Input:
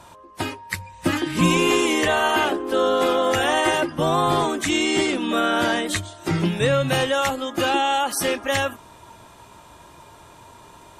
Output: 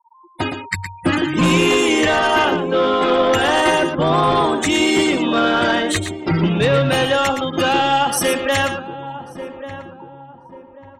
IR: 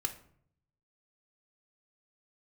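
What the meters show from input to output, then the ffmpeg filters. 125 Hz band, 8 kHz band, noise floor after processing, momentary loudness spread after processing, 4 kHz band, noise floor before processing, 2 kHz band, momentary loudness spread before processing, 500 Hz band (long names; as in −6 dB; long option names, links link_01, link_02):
+5.0 dB, +2.5 dB, −44 dBFS, 14 LU, +4.0 dB, −47 dBFS, +4.5 dB, 8 LU, +4.5 dB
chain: -filter_complex "[0:a]afftfilt=real='re*gte(hypot(re,im),0.0398)':imag='im*gte(hypot(re,im),0.0398)':win_size=1024:overlap=0.75,asplit=2[link_01][link_02];[link_02]adelay=1140,lowpass=frequency=870:poles=1,volume=-14.5dB,asplit=2[link_03][link_04];[link_04]adelay=1140,lowpass=frequency=870:poles=1,volume=0.37,asplit=2[link_05][link_06];[link_06]adelay=1140,lowpass=frequency=870:poles=1,volume=0.37[link_07];[link_03][link_05][link_07]amix=inputs=3:normalize=0[link_08];[link_01][link_08]amix=inputs=2:normalize=0,aeval=exprs='0.447*sin(PI/2*1.78*val(0)/0.447)':channel_layout=same,asplit=2[link_09][link_10];[link_10]aecho=0:1:116:0.376[link_11];[link_09][link_11]amix=inputs=2:normalize=0,dynaudnorm=framelen=160:gausssize=5:maxgain=6dB,volume=-6dB"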